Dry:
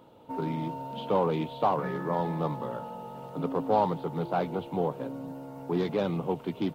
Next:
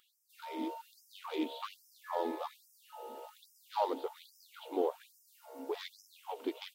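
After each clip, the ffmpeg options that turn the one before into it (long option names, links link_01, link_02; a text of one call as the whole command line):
ffmpeg -i in.wav -af "equalizer=frequency=1100:width=0.39:gain=-10.5,afftfilt=real='re*gte(b*sr/1024,250*pow(5100/250,0.5+0.5*sin(2*PI*1.2*pts/sr)))':imag='im*gte(b*sr/1024,250*pow(5100/250,0.5+0.5*sin(2*PI*1.2*pts/sr)))':win_size=1024:overlap=0.75,volume=4.5dB" out.wav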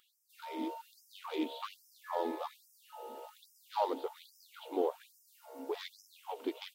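ffmpeg -i in.wav -af anull out.wav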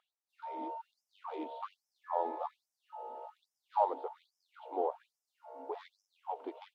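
ffmpeg -i in.wav -af "bandpass=frequency=770:width_type=q:width=2.1:csg=0,volume=5dB" out.wav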